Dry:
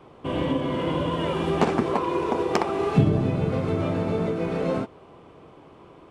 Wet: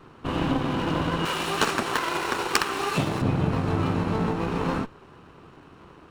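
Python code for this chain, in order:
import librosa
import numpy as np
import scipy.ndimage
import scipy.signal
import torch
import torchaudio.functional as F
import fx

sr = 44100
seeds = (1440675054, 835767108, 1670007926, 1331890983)

y = fx.lower_of_two(x, sr, delay_ms=0.73)
y = fx.tilt_eq(y, sr, slope=3.5, at=(1.25, 3.22))
y = y * 10.0 ** (1.5 / 20.0)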